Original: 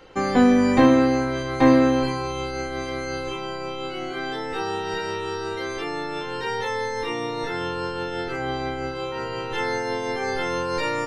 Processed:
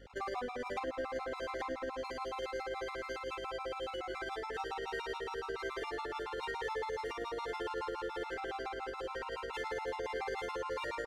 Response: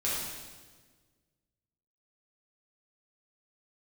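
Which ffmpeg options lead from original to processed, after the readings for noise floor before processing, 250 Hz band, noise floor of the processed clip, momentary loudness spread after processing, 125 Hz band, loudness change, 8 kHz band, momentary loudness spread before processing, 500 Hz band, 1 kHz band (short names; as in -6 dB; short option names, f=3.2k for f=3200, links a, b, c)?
-31 dBFS, -27.0 dB, -44 dBFS, 2 LU, -24.0 dB, -15.5 dB, -16.0 dB, 13 LU, -13.5 dB, -12.5 dB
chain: -filter_complex "[0:a]highpass=f=380:w=0.5412,highpass=f=380:w=1.3066,bandreject=f=60:t=h:w=6,bandreject=f=120:t=h:w=6,bandreject=f=180:t=h:w=6,bandreject=f=240:t=h:w=6,bandreject=f=300:t=h:w=6,bandreject=f=360:t=h:w=6,bandreject=f=420:t=h:w=6,bandreject=f=480:t=h:w=6,acompressor=threshold=-25dB:ratio=12,acrusher=bits=7:mix=0:aa=0.000001,asoftclip=type=tanh:threshold=-25dB,adynamicsmooth=sensitivity=6.5:basefreq=2.9k,tremolo=f=18:d=0.36,aeval=exprs='val(0)+0.00251*(sin(2*PI*50*n/s)+sin(2*PI*2*50*n/s)/2+sin(2*PI*3*50*n/s)/3+sin(2*PI*4*50*n/s)/4+sin(2*PI*5*50*n/s)/5)':c=same,aecho=1:1:817:0.282,asplit=2[a][b];[1:a]atrim=start_sample=2205[c];[b][c]afir=irnorm=-1:irlink=0,volume=-20dB[d];[a][d]amix=inputs=2:normalize=0,afftfilt=real='re*gt(sin(2*PI*7.1*pts/sr)*(1-2*mod(floor(b*sr/1024/700),2)),0)':imag='im*gt(sin(2*PI*7.1*pts/sr)*(1-2*mod(floor(b*sr/1024/700),2)),0)':win_size=1024:overlap=0.75,volume=-3.5dB"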